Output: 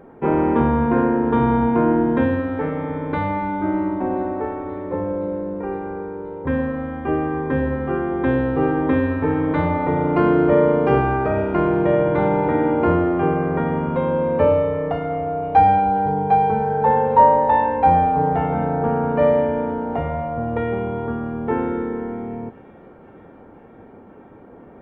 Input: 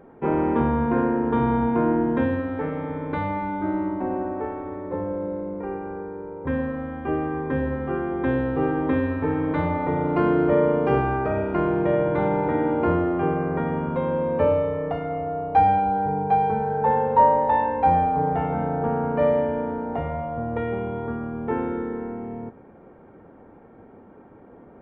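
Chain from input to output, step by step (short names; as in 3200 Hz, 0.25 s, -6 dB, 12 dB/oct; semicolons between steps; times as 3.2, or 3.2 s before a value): thin delay 0.519 s, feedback 80%, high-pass 2600 Hz, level -18 dB; gain +4 dB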